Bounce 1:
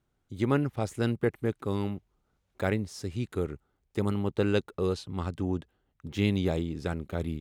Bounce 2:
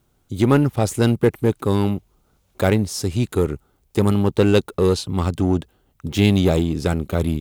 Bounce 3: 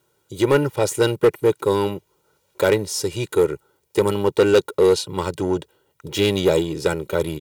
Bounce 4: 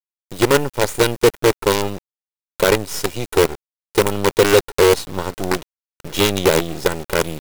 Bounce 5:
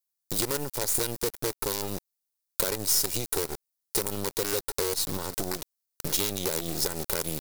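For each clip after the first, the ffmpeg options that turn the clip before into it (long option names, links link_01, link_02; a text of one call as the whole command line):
ffmpeg -i in.wav -filter_complex "[0:a]equalizer=frequency=1800:width_type=o:width=0.67:gain=-4.5,asplit=2[link_01][link_02];[link_02]asoftclip=type=hard:threshold=-27dB,volume=-3.5dB[link_03];[link_01][link_03]amix=inputs=2:normalize=0,highshelf=frequency=8200:gain=9.5,volume=8dB" out.wav
ffmpeg -i in.wav -af "highpass=200,aecho=1:1:2.1:0.84,asoftclip=type=hard:threshold=-8.5dB" out.wav
ffmpeg -i in.wav -filter_complex "[0:a]asplit=2[link_01][link_02];[link_02]acompressor=threshold=-26dB:ratio=8,volume=-2dB[link_03];[link_01][link_03]amix=inputs=2:normalize=0,acrusher=bits=3:dc=4:mix=0:aa=0.000001" out.wav
ffmpeg -i in.wav -af "alimiter=limit=-15.5dB:level=0:latency=1:release=106,acompressor=threshold=-27dB:ratio=6,aexciter=amount=3.9:drive=2.7:freq=4100" out.wav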